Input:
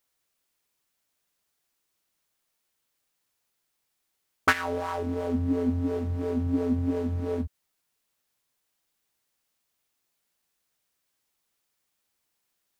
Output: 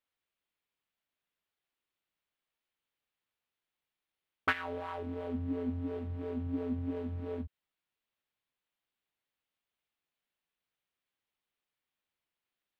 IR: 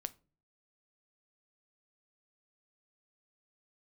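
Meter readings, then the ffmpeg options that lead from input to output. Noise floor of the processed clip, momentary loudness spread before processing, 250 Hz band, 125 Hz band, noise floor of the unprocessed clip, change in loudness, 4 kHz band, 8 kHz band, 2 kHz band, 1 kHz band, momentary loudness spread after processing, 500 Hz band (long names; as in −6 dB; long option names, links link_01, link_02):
below −85 dBFS, 5 LU, −9.0 dB, −9.0 dB, −78 dBFS, −8.5 dB, −8.5 dB, below −20 dB, −8.0 dB, −8.5 dB, 6 LU, −9.0 dB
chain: -af "highshelf=frequency=4400:width_type=q:width=1.5:gain=-10,volume=-9dB"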